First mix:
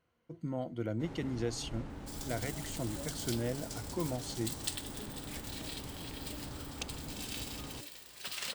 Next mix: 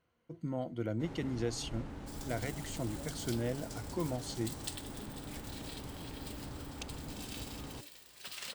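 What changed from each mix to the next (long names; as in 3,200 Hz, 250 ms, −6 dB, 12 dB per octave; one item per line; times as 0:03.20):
second sound −4.5 dB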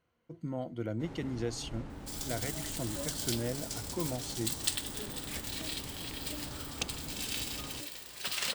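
second sound +10.0 dB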